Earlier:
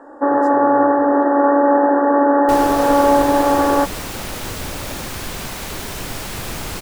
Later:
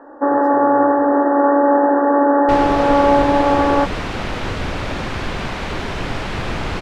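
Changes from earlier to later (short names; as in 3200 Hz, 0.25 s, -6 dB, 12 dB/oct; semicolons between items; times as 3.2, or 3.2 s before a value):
second sound +5.5 dB; master: add LPF 3000 Hz 12 dB/oct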